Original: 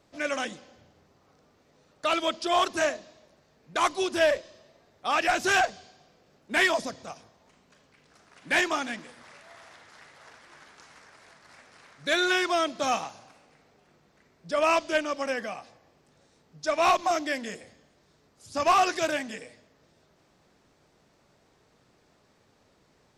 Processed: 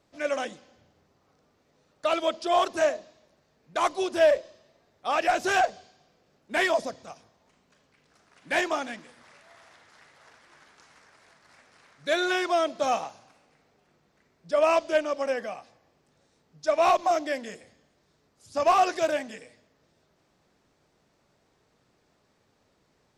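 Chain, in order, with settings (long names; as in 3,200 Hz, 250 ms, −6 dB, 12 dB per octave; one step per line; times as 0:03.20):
dynamic equaliser 580 Hz, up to +8 dB, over −40 dBFS, Q 1.1
level −4 dB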